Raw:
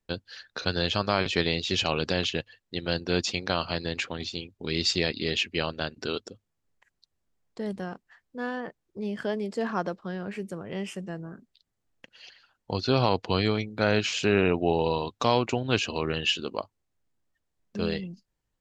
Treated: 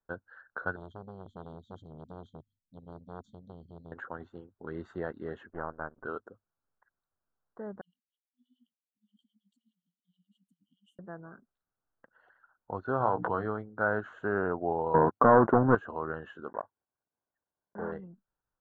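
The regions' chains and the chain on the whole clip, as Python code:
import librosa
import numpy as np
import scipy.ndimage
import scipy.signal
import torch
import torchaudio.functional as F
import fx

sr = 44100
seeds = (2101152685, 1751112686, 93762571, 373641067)

y = fx.chain(x, sr, fx.brickwall_bandstop(low_hz=270.0, high_hz=3100.0),
    fx.transformer_sat(knee_hz=1400.0), at=(0.76, 3.92))
y = fx.chain(y, sr, fx.halfwave_gain(db=-12.0),
    fx.lowpass(hz=1600.0, slope=12), at=(5.49, 6.05))
y = fx.chain(y, sr, fx.over_compress(threshold_db=-36.0, ratio=-1.0),
    fx.filter_lfo_highpass(shape='sine', hz=9.5, low_hz=580.0, high_hz=3400.0, q=4.8),
    fx.brickwall_bandstop(low_hz=280.0, high_hz=2800.0), at=(7.81, 10.99))
y = fx.chain(y, sr, fx.hum_notches(base_hz=60, count=5),
    fx.doubler(ms=17.0, db=-9),
    fx.pre_swell(db_per_s=38.0), at=(13.0, 13.46))
y = fx.chain(y, sr, fx.highpass(hz=190.0, slope=12),
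    fx.tilt_eq(slope=-4.5),
    fx.leveller(passes=3), at=(14.94, 15.75))
y = fx.chain(y, sr, fx.block_float(bits=3),
    fx.lowpass(hz=2000.0, slope=12),
    fx.notch_comb(f0_hz=1300.0), at=(16.48, 17.92))
y = scipy.signal.sosfilt(scipy.signal.ellip(4, 1.0, 40, 1500.0, 'lowpass', fs=sr, output='sos'), y)
y = fx.tilt_shelf(y, sr, db=-8.5, hz=830.0)
y = y * 10.0 ** (-2.0 / 20.0)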